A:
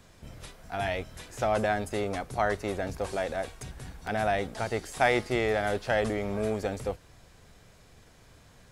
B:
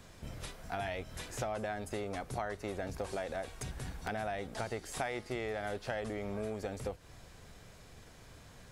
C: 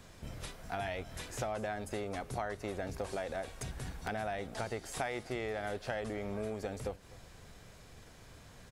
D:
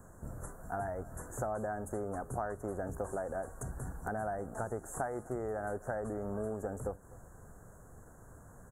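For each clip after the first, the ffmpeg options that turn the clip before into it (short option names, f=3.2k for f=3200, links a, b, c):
-af "acompressor=threshold=-36dB:ratio=6,volume=1dB"
-af "aecho=1:1:252:0.0891"
-af "asuperstop=centerf=3400:order=12:qfactor=0.64,volume=1dB"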